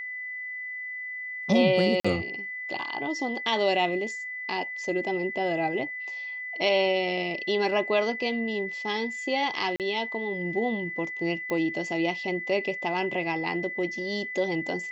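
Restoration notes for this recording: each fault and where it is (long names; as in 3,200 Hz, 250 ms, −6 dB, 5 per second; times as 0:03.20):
whistle 2,000 Hz −33 dBFS
0:02.00–0:02.04: drop-out 45 ms
0:09.76–0:09.80: drop-out 38 ms
0:11.50: click −18 dBFS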